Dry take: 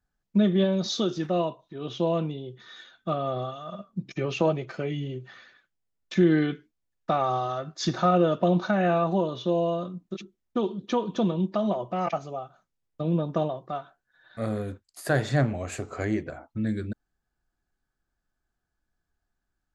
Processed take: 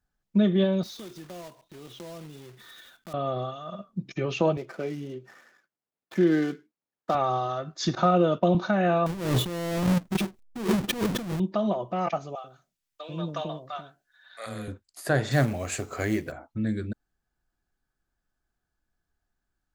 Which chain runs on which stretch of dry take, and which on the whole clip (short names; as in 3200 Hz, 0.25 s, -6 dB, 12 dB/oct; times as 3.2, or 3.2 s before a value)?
0.83–3.14 block floating point 3-bit + compressor 2.5:1, threshold -46 dBFS
4.57–7.15 median filter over 15 samples + HPF 210 Hz
7.95–8.55 expander -33 dBFS + notch 1700 Hz + three-band squash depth 40%
9.06–11.4 half-waves squared off + low shelf 340 Hz +8 dB + negative-ratio compressor -28 dBFS
12.35–14.68 tilt shelf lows -7.5 dB, about 1200 Hz + bands offset in time highs, lows 90 ms, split 480 Hz
15.31–16.32 high shelf 2100 Hz +7 dB + companded quantiser 6-bit
whole clip: dry